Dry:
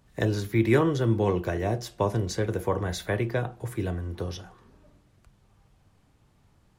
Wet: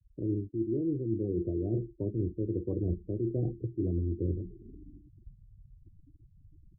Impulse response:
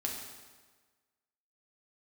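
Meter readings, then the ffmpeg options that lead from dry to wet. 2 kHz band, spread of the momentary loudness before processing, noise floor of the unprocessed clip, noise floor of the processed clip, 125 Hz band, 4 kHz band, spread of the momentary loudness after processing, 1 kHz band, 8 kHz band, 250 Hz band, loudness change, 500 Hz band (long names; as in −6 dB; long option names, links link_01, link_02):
below −40 dB, 11 LU, −63 dBFS, −62 dBFS, −5.0 dB, below −40 dB, 5 LU, below −25 dB, below −35 dB, −3.0 dB, −5.5 dB, −8.0 dB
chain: -af "lowpass=frequency=330:width_type=q:width=4,areverse,acompressor=threshold=-30dB:ratio=10,areverse,lowshelf=frequency=100:gain=10.5,afftfilt=real='re*gte(hypot(re,im),0.01)':imag='im*gte(hypot(re,im),0.01)':win_size=1024:overlap=0.75"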